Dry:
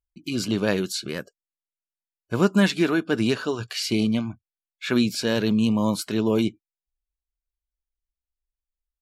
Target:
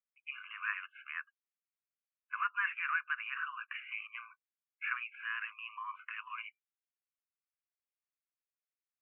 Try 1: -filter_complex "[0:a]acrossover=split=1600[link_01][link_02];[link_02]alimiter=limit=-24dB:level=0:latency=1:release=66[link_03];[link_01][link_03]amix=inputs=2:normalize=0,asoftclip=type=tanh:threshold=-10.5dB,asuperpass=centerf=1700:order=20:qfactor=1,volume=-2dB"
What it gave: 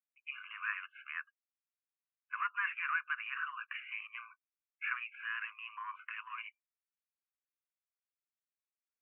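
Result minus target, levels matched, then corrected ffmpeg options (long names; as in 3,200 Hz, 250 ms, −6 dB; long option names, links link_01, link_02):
soft clipping: distortion +17 dB
-filter_complex "[0:a]acrossover=split=1600[link_01][link_02];[link_02]alimiter=limit=-24dB:level=0:latency=1:release=66[link_03];[link_01][link_03]amix=inputs=2:normalize=0,asoftclip=type=tanh:threshold=-1dB,asuperpass=centerf=1700:order=20:qfactor=1,volume=-2dB"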